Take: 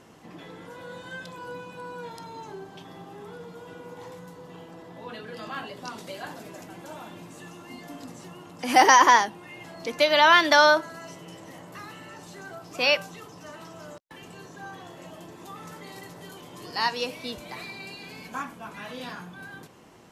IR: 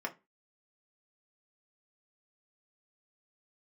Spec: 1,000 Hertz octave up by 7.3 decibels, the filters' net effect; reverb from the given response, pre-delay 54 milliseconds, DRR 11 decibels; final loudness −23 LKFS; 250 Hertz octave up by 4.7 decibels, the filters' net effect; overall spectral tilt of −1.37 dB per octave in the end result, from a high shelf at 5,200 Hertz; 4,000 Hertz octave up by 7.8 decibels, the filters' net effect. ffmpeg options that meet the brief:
-filter_complex "[0:a]equalizer=frequency=250:width_type=o:gain=5.5,equalizer=frequency=1000:width_type=o:gain=7.5,equalizer=frequency=4000:width_type=o:gain=7.5,highshelf=frequency=5200:gain=5,asplit=2[link_01][link_02];[1:a]atrim=start_sample=2205,adelay=54[link_03];[link_02][link_03]afir=irnorm=-1:irlink=0,volume=-14dB[link_04];[link_01][link_04]amix=inputs=2:normalize=0,volume=-9dB"

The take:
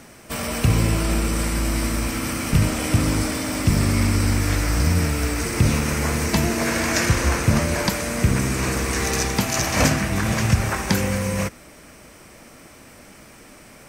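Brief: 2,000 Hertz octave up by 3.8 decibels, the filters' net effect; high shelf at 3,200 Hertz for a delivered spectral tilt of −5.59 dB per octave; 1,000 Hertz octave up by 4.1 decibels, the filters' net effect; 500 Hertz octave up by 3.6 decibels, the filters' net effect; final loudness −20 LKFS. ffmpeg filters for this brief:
ffmpeg -i in.wav -af "equalizer=frequency=500:width_type=o:gain=3.5,equalizer=frequency=1000:width_type=o:gain=3.5,equalizer=frequency=2000:width_type=o:gain=6,highshelf=frequency=3200:gain=-8,volume=0.5dB" out.wav

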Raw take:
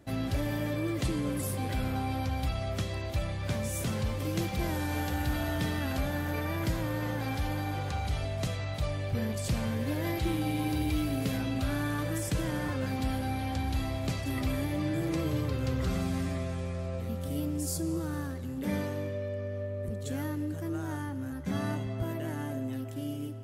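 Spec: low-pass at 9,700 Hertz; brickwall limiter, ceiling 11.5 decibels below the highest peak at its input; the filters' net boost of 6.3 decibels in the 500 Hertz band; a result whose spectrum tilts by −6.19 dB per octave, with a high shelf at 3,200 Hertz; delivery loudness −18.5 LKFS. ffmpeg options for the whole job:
ffmpeg -i in.wav -af "lowpass=9700,equalizer=frequency=500:width_type=o:gain=8,highshelf=frequency=3200:gain=-4.5,volume=18dB,alimiter=limit=-10.5dB:level=0:latency=1" out.wav

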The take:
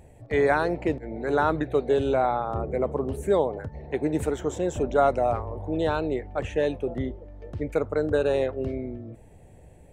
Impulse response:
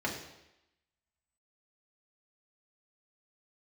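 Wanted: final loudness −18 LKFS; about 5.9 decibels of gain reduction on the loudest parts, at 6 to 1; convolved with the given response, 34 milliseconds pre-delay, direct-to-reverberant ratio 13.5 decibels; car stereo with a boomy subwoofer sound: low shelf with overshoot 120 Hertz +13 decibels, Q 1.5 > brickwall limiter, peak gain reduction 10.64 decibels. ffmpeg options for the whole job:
-filter_complex "[0:a]acompressor=threshold=-23dB:ratio=6,asplit=2[link_01][link_02];[1:a]atrim=start_sample=2205,adelay=34[link_03];[link_02][link_03]afir=irnorm=-1:irlink=0,volume=-20.5dB[link_04];[link_01][link_04]amix=inputs=2:normalize=0,lowshelf=frequency=120:width_type=q:width=1.5:gain=13,volume=12.5dB,alimiter=limit=-8.5dB:level=0:latency=1"

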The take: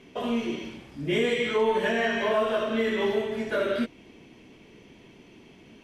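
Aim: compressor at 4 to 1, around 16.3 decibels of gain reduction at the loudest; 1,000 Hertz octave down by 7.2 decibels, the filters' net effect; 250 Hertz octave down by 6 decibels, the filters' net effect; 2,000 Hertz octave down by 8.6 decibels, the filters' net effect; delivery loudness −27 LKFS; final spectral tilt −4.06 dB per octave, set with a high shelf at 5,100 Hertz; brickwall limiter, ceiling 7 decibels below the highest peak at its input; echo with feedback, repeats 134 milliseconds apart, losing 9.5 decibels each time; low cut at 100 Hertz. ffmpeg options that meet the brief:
ffmpeg -i in.wav -af "highpass=100,equalizer=frequency=250:width_type=o:gain=-6.5,equalizer=frequency=1000:width_type=o:gain=-7,equalizer=frequency=2000:width_type=o:gain=-7.5,highshelf=frequency=5100:gain=-5.5,acompressor=threshold=-45dB:ratio=4,alimiter=level_in=15.5dB:limit=-24dB:level=0:latency=1,volume=-15.5dB,aecho=1:1:134|268|402|536:0.335|0.111|0.0365|0.012,volume=22dB" out.wav

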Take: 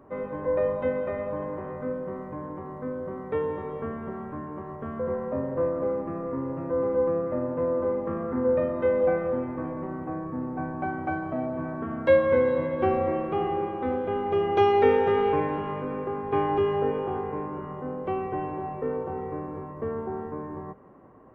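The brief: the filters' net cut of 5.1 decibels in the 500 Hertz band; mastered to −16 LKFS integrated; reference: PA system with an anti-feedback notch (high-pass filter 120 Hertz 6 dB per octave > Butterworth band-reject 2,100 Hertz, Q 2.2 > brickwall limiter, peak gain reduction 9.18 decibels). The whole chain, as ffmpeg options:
ffmpeg -i in.wav -af "highpass=frequency=120:poles=1,asuperstop=centerf=2100:order=8:qfactor=2.2,equalizer=frequency=500:width_type=o:gain=-5.5,volume=17.5dB,alimiter=limit=-4.5dB:level=0:latency=1" out.wav

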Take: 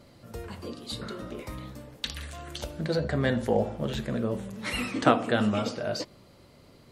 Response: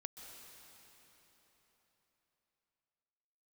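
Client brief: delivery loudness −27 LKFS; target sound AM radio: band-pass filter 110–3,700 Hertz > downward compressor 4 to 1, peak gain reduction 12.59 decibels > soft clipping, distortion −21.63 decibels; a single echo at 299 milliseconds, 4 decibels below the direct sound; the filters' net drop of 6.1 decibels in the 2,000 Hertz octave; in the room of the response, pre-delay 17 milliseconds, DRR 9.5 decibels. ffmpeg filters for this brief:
-filter_complex "[0:a]equalizer=frequency=2000:width_type=o:gain=-8,aecho=1:1:299:0.631,asplit=2[link_01][link_02];[1:a]atrim=start_sample=2205,adelay=17[link_03];[link_02][link_03]afir=irnorm=-1:irlink=0,volume=-6dB[link_04];[link_01][link_04]amix=inputs=2:normalize=0,highpass=110,lowpass=3700,acompressor=threshold=-30dB:ratio=4,asoftclip=threshold=-22.5dB,volume=9.5dB"

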